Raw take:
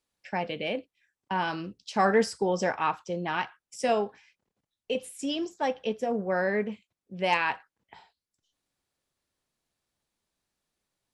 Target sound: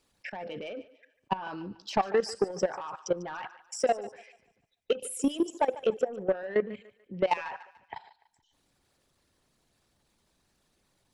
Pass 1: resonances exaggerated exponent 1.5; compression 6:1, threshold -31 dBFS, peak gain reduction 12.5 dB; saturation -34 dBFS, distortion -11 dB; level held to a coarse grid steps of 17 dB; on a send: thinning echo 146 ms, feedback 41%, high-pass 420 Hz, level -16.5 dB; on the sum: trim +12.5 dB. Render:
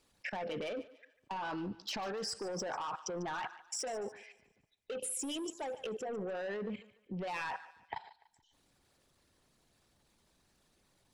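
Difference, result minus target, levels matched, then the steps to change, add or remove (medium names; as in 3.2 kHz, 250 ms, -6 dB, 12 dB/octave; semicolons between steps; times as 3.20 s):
saturation: distortion +7 dB
change: saturation -27.5 dBFS, distortion -18 dB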